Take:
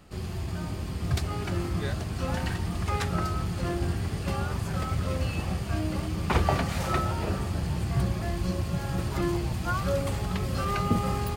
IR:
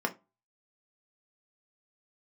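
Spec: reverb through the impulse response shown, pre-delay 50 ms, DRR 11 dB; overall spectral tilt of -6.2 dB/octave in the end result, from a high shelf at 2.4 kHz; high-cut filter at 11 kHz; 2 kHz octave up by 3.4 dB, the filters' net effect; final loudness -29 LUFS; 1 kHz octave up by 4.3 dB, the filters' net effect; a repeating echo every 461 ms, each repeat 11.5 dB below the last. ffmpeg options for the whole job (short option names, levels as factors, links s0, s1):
-filter_complex "[0:a]lowpass=11000,equalizer=f=1000:t=o:g=5.5,equalizer=f=2000:t=o:g=6.5,highshelf=f=2400:g=-8.5,aecho=1:1:461|922|1383:0.266|0.0718|0.0194,asplit=2[s0][s1];[1:a]atrim=start_sample=2205,adelay=50[s2];[s1][s2]afir=irnorm=-1:irlink=0,volume=0.119[s3];[s0][s3]amix=inputs=2:normalize=0,volume=0.891"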